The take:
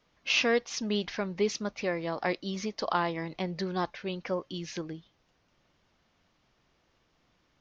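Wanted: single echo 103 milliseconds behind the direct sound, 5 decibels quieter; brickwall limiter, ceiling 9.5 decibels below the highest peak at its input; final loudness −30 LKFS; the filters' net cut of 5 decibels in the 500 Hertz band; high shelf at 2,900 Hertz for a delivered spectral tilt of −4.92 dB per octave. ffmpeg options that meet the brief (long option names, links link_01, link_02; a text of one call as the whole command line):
ffmpeg -i in.wav -af "equalizer=frequency=500:width_type=o:gain=-6,highshelf=frequency=2900:gain=-6.5,alimiter=level_in=2dB:limit=-24dB:level=0:latency=1,volume=-2dB,aecho=1:1:103:0.562,volume=6dB" out.wav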